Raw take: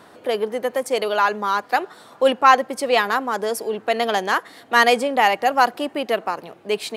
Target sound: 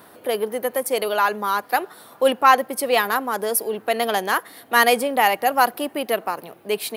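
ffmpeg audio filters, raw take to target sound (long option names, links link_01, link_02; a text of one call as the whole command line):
ffmpeg -i in.wav -af "aexciter=amount=6.2:drive=4.6:freq=9900,volume=-1dB" out.wav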